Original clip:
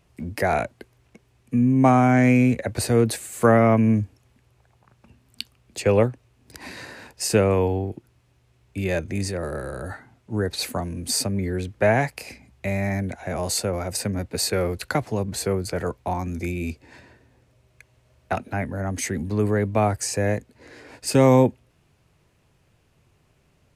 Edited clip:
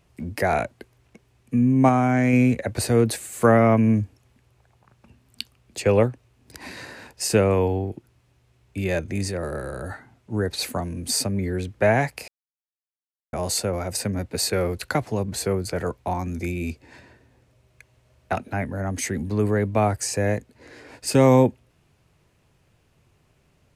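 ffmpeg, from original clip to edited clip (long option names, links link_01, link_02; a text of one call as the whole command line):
ffmpeg -i in.wav -filter_complex "[0:a]asplit=5[link_01][link_02][link_03][link_04][link_05];[link_01]atrim=end=1.892[link_06];[link_02]atrim=start=1.888:end=2.332,asetpts=PTS-STARTPTS,volume=-3dB[link_07];[link_03]atrim=start=2.328:end=12.28,asetpts=PTS-STARTPTS,afade=type=out:start_time=9.948:duration=0.004:curve=hsin[link_08];[link_04]atrim=start=12.28:end=13.33,asetpts=PTS-STARTPTS,volume=0[link_09];[link_05]atrim=start=13.33,asetpts=PTS-STARTPTS,afade=type=in:duration=0.004:curve=hsin[link_10];[link_06][link_07]acrossfade=duration=0.004:curve1=hsin:curve2=hsin[link_11];[link_08][link_09][link_10]concat=n=3:v=0:a=1[link_12];[link_11][link_12]acrossfade=duration=0.004:curve1=hsin:curve2=hsin" out.wav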